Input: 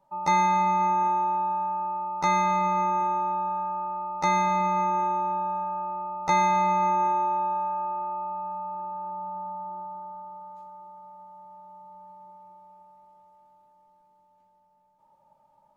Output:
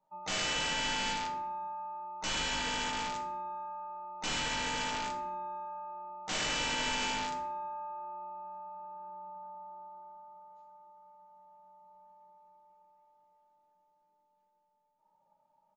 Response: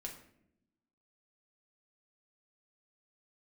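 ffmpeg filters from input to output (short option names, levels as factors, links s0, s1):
-filter_complex "[0:a]lowshelf=f=180:g=-9,aresample=16000,aeval=exprs='(mod(10*val(0)+1,2)-1)/10':c=same,aresample=44100[s0];[1:a]atrim=start_sample=2205[s1];[s0][s1]afir=irnorm=-1:irlink=0,volume=0.501"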